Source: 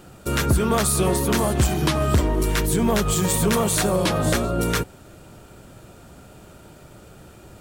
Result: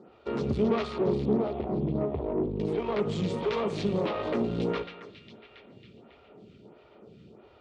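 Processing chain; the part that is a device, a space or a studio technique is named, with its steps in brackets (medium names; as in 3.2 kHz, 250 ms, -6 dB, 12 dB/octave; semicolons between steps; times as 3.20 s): 0.98–2.60 s: steep low-pass 830 Hz 36 dB/octave; band-passed feedback delay 274 ms, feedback 67%, band-pass 2.6 kHz, level -7.5 dB; vibe pedal into a guitar amplifier (lamp-driven phase shifter 1.5 Hz; valve stage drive 23 dB, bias 0.75; cabinet simulation 89–4200 Hz, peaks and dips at 220 Hz +7 dB, 420 Hz +9 dB, 1.6 kHz -9 dB); spring tank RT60 1.1 s, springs 57 ms, chirp 55 ms, DRR 14.5 dB; trim -2 dB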